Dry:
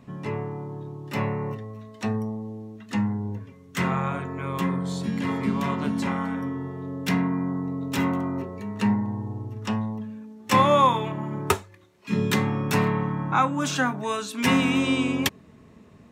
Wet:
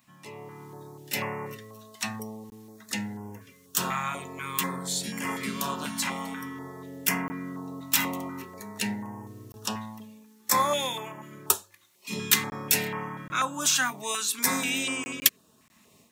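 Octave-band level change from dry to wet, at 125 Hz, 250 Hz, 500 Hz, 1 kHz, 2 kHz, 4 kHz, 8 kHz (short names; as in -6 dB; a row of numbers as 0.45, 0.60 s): -13.0, -10.5, -8.0, -6.0, -1.0, +3.0, +10.5 dB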